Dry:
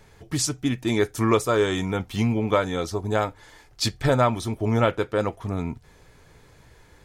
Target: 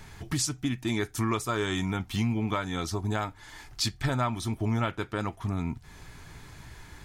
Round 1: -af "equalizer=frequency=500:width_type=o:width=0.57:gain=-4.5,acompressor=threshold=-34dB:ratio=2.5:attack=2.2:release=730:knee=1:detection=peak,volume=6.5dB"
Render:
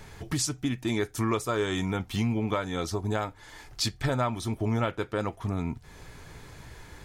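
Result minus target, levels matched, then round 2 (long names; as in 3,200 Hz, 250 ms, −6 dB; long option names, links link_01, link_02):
500 Hz band +3.5 dB
-af "equalizer=frequency=500:width_type=o:width=0.57:gain=-13,acompressor=threshold=-34dB:ratio=2.5:attack=2.2:release=730:knee=1:detection=peak,volume=6.5dB"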